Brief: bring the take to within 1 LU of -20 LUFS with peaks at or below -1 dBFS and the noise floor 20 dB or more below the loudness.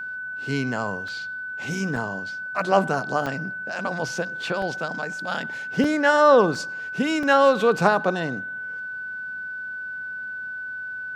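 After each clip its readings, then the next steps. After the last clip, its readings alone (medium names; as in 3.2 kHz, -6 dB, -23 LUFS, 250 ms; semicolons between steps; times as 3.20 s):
dropouts 7; longest dropout 2.9 ms; steady tone 1.5 kHz; tone level -30 dBFS; loudness -24.0 LUFS; peak level -2.0 dBFS; loudness target -20.0 LUFS
-> interpolate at 1.08/1.96/3.26/4.62/5.84/6.55/7.23 s, 2.9 ms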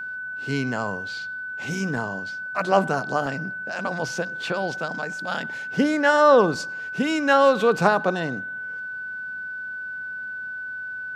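dropouts 0; steady tone 1.5 kHz; tone level -30 dBFS
-> band-stop 1.5 kHz, Q 30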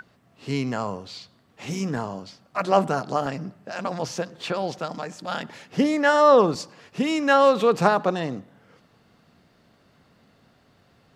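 steady tone not found; loudness -23.5 LUFS; peak level -2.5 dBFS; loudness target -20.0 LUFS
-> trim +3.5 dB; peak limiter -1 dBFS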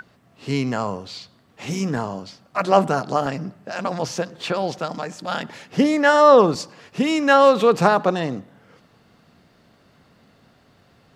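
loudness -20.0 LUFS; peak level -1.0 dBFS; noise floor -57 dBFS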